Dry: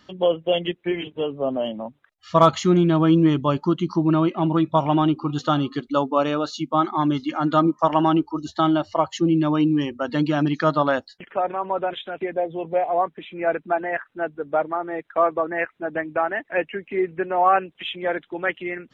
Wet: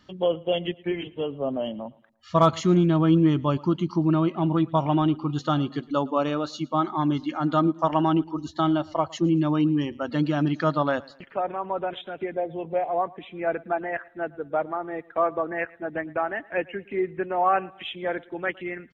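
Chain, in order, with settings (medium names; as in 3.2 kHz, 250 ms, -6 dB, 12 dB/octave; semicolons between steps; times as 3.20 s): bass shelf 180 Hz +6.5 dB; on a send: feedback delay 112 ms, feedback 39%, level -23 dB; on the sum: trim -4.5 dB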